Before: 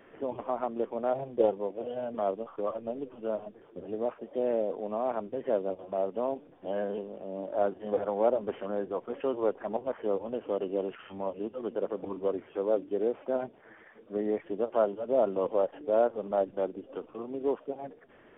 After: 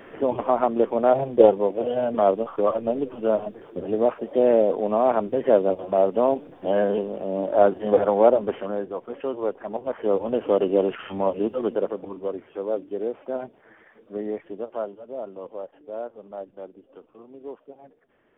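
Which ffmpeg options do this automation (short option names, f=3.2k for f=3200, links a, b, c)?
-af "volume=20dB,afade=t=out:st=8.05:d=0.87:silence=0.354813,afade=t=in:st=9.75:d=0.68:silence=0.354813,afade=t=out:st=11.58:d=0.46:silence=0.316228,afade=t=out:st=14.22:d=0.91:silence=0.354813"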